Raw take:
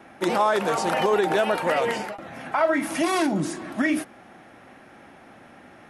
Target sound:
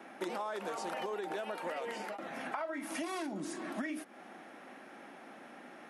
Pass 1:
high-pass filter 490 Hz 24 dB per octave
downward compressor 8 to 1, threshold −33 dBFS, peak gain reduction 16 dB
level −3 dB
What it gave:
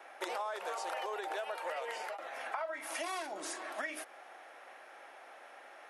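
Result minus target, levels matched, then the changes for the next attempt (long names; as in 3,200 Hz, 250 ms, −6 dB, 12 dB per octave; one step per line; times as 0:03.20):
250 Hz band −12.0 dB
change: high-pass filter 200 Hz 24 dB per octave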